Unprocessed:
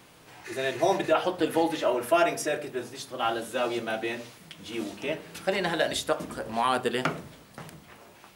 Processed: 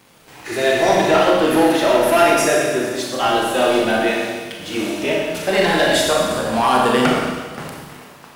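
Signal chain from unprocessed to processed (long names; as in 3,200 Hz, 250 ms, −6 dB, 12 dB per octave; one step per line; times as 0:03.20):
leveller curve on the samples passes 2
four-comb reverb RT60 1.5 s, combs from 28 ms, DRR −2 dB
level +2 dB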